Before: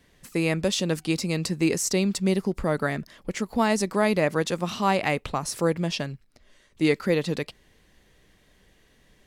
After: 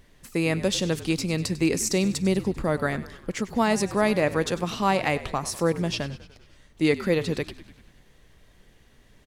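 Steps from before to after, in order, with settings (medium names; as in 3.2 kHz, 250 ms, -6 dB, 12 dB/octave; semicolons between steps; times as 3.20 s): on a send: frequency-shifting echo 98 ms, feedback 61%, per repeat -52 Hz, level -16 dB; on the sum: added noise brown -56 dBFS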